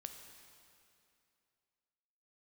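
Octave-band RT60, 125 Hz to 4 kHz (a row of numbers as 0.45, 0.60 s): 2.6, 2.7, 2.7, 2.6, 2.5, 2.3 s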